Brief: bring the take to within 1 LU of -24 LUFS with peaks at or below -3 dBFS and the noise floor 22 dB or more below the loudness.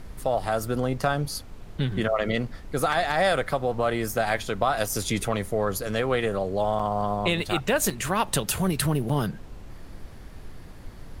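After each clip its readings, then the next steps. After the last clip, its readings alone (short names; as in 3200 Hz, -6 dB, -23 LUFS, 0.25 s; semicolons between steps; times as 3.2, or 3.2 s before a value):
dropouts 3; longest dropout 5.0 ms; noise floor -43 dBFS; noise floor target -48 dBFS; loudness -26.0 LUFS; peak -8.0 dBFS; loudness target -24.0 LUFS
-> interpolate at 6.79/7.9/9.09, 5 ms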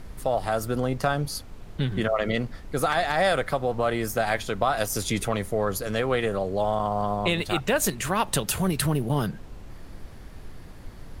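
dropouts 0; noise floor -43 dBFS; noise floor target -48 dBFS
-> noise print and reduce 6 dB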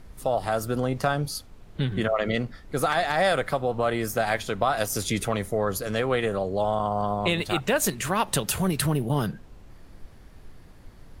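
noise floor -49 dBFS; loudness -26.0 LUFS; peak -8.0 dBFS; loudness target -24.0 LUFS
-> gain +2 dB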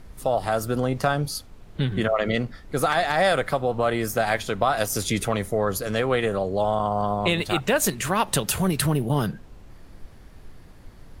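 loudness -24.0 LUFS; peak -6.0 dBFS; noise floor -47 dBFS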